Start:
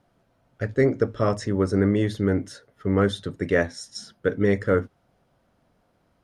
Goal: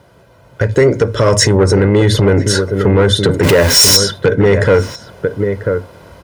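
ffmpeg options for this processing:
-filter_complex "[0:a]asettb=1/sr,asplit=3[a][b][c];[a]atrim=end=3.434[d];[b]atrim=start=3.43:end=3.97,asetpts=PTS-STARTPTS,afade=t=in:d=0.004:c=qsin,afade=t=out:st=0.536:d=0.004:c=qsin,aeval=exprs='val(0)+0.5*0.0398*sgn(val(0))':c=same[e];[c]atrim=start=3.966[f];[d][e]acrossfade=d=0.004:c1=hsin:c2=qsin[g];[g][f]acrossfade=d=0.004:c1=qsin:c2=hsin,aecho=1:1:2:0.53,acompressor=threshold=-28dB:ratio=6,asplit=2[h][i];[i]adelay=991.3,volume=-12dB,highshelf=f=4k:g=-22.3[j];[h][j]amix=inputs=2:normalize=0,dynaudnorm=f=240:g=7:m=8.5dB,asettb=1/sr,asplit=3[k][l][m];[k]atrim=end=0.724[n];[l]atrim=start=0.72:end=1.55,asetpts=PTS-STARTPTS,afade=t=in:d=0.004:c=qsin,afade=t=out:st=0.826:d=0.004:c=qsin,highshelf=f=4.9k:g=9[o];[m]atrim=start=1.546[p];[n][o]acrossfade=d=0.004:c1=hsin:c2=qsin[q];[q][p]acrossfade=d=0.004:c1=qsin:c2=hsin,asoftclip=type=tanh:threshold=-18.5dB,highpass=f=51:w=0.5412,highpass=f=51:w=1.3066,alimiter=level_in=20dB:limit=-1dB:release=50:level=0:latency=1,volume=-1dB"

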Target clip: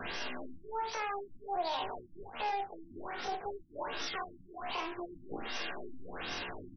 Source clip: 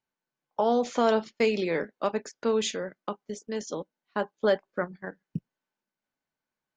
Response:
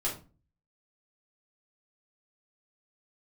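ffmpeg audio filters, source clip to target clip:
-filter_complex "[0:a]aeval=exprs='val(0)+0.5*0.02*sgn(val(0))':c=same,highshelf=f=3k:g=9.5,bandreject=f=2.3k:w=19,acompressor=threshold=-32dB:ratio=3,alimiter=level_in=5.5dB:limit=-24dB:level=0:latency=1:release=443,volume=-5.5dB,aecho=1:1:21|51:0.15|0.422,acrossover=split=100|270[a][b][c];[a]acompressor=threshold=-59dB:ratio=4[d];[b]acompressor=threshold=-56dB:ratio=4[e];[c]acompressor=threshold=-38dB:ratio=4[f];[d][e][f]amix=inputs=3:normalize=0,aresample=16000,asoftclip=type=tanh:threshold=-38.5dB,aresample=44100,acrusher=bits=9:mix=0:aa=0.000001,asetrate=80880,aresample=44100,atempo=0.545254,asplit=2[g][h];[1:a]atrim=start_sample=2205,asetrate=83790,aresample=44100[i];[h][i]afir=irnorm=-1:irlink=0,volume=-5dB[j];[g][j]amix=inputs=2:normalize=0,afftfilt=real='re*lt(b*sr/1024,310*pow(6200/310,0.5+0.5*sin(2*PI*1.3*pts/sr)))':imag='im*lt(b*sr/1024,310*pow(6200/310,0.5+0.5*sin(2*PI*1.3*pts/sr)))':win_size=1024:overlap=0.75,volume=7dB"

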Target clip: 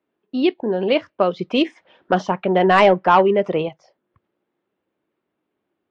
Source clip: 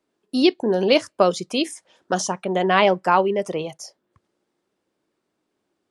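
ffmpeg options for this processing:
-filter_complex "[0:a]lowpass=f=3.2k:w=0.5412,lowpass=f=3.2k:w=1.3066,asettb=1/sr,asplit=3[a][b][c];[a]atrim=end=1.394[d];[b]atrim=start=1.39:end=3.69,asetpts=PTS-STARTPTS,afade=t=in:d=0.004:c=qsin,afade=t=out:st=2.296:d=0.004:c=qsin,acontrast=69[e];[c]atrim=start=3.686[f];[d][e]acrossfade=d=0.004:c1=hsin:c2=qsin[g];[g][f]acrossfade=d=0.004:c1=qsin:c2=hsin,volume=-1dB" -ar 44100 -c:a libvorbis -b:a 96k

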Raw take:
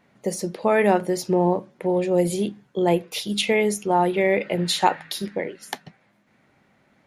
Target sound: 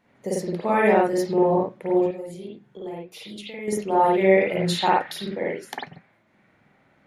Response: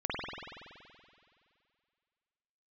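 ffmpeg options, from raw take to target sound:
-filter_complex "[0:a]asettb=1/sr,asplit=3[a][b][c];[a]atrim=end=2.014[d];[b]atrim=start=2.01:end=3.68,asetpts=PTS-STARTPTS,afade=t=in:d=0.004:c=qsin,afade=t=out:st=1.666:d=0.004:c=qsin,acompressor=threshold=-35dB:ratio=5[e];[c]atrim=start=3.676[f];[d][e]acrossfade=d=0.004:c1=hsin:c2=qsin[g];[g][f]acrossfade=d=0.004:c1=qsin:c2=hsin[h];[1:a]atrim=start_sample=2205,afade=t=out:st=0.16:d=0.01,atrim=end_sample=7497[i];[h][i]afir=irnorm=-1:irlink=0,volume=-4dB"

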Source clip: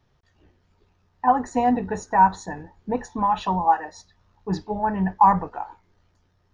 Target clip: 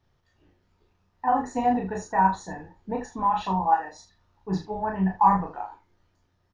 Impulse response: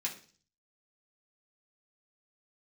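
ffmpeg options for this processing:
-af "aecho=1:1:26|37|77:0.531|0.596|0.266,volume=-5.5dB"

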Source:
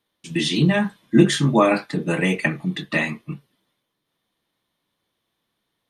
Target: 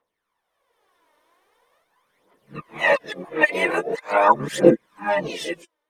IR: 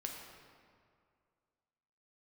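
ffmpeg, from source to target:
-filter_complex "[0:a]areverse,dynaudnorm=f=220:g=7:m=15.5dB,aphaser=in_gain=1:out_gain=1:delay=3.4:decay=0.66:speed=0.43:type=triangular,asplit=2[a][b];[b]asetrate=66075,aresample=44100,atempo=0.66742,volume=-8dB[c];[a][c]amix=inputs=2:normalize=0,equalizer=f=125:t=o:w=1:g=-7,equalizer=f=250:t=o:w=1:g=-3,equalizer=f=500:t=o:w=1:g=11,equalizer=f=1k:t=o:w=1:g=11,equalizer=f=2k:t=o:w=1:g=7,equalizer=f=4k:t=o:w=1:g=-4,equalizer=f=8k:t=o:w=1:g=4,volume=-13.5dB"

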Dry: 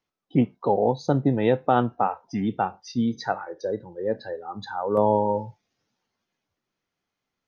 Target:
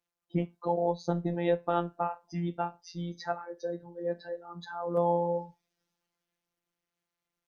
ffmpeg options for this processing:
-af "afftfilt=real='hypot(re,im)*cos(PI*b)':imag='0':win_size=1024:overlap=0.75,volume=-3.5dB" -ar 48000 -c:a sbc -b:a 192k

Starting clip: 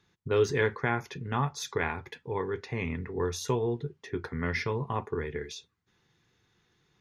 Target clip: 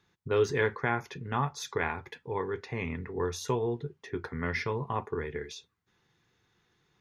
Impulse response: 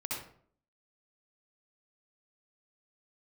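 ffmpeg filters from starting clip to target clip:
-af "equalizer=f=970:w=0.53:g=3,volume=-2.5dB"

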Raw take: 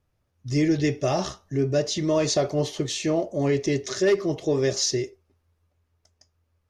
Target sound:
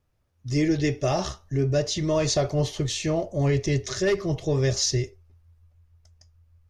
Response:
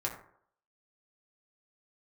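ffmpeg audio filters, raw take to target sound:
-af "asubboost=boost=8.5:cutoff=100"

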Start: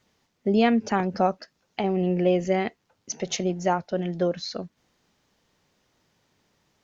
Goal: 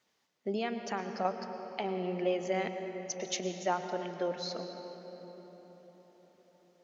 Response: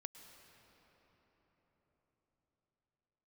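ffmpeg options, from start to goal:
-filter_complex "[0:a]highpass=f=480:p=1,asettb=1/sr,asplit=3[a][b][c];[a]atrim=end=0.564[d];[b]atrim=start=0.56:end=1.25,asetpts=PTS-STARTPTS,afade=t=in:d=0.004:c=qsin,afade=t=out:st=0.686:d=0.004:c=qsin,acompressor=threshold=-29dB:ratio=2[e];[c]atrim=start=1.246[f];[d][e]acrossfade=d=0.004:c1=hsin:c2=qsin[g];[g][f]acrossfade=d=0.004:c1=qsin:c2=hsin[h];[1:a]atrim=start_sample=2205[i];[h][i]afir=irnorm=-1:irlink=0"

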